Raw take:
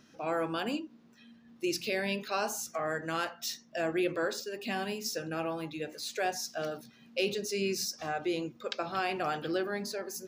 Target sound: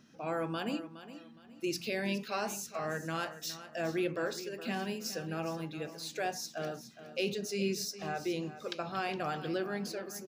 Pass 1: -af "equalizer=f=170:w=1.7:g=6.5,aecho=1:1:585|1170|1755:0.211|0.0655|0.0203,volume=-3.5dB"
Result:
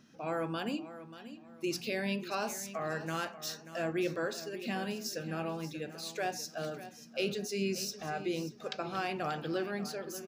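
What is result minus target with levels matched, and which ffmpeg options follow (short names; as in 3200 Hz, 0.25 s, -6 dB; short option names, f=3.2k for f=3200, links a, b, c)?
echo 0.17 s late
-af "equalizer=f=170:w=1.7:g=6.5,aecho=1:1:415|830|1245:0.211|0.0655|0.0203,volume=-3.5dB"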